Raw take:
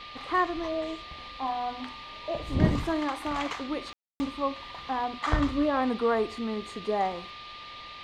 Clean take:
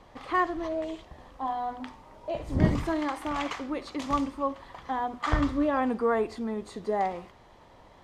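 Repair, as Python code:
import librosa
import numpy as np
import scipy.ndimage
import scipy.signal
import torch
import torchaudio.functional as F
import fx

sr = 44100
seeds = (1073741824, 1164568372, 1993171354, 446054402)

y = fx.notch(x, sr, hz=1200.0, q=30.0)
y = fx.fix_ambience(y, sr, seeds[0], print_start_s=7.51, print_end_s=8.01, start_s=3.93, end_s=4.2)
y = fx.noise_reduce(y, sr, print_start_s=7.51, print_end_s=8.01, reduce_db=10.0)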